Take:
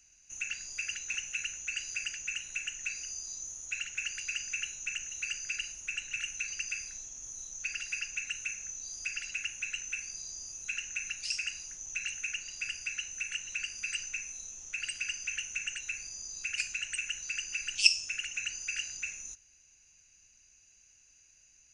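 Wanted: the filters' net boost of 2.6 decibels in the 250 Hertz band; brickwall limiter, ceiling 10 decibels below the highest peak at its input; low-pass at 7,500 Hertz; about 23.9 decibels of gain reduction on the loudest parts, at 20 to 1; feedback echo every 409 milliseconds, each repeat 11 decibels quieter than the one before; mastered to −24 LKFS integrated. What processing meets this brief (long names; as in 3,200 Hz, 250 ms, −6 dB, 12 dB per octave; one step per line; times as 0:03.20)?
low-pass filter 7,500 Hz
parametric band 250 Hz +3.5 dB
downward compressor 20 to 1, threshold −41 dBFS
brickwall limiter −39 dBFS
repeating echo 409 ms, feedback 28%, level −11 dB
level +22 dB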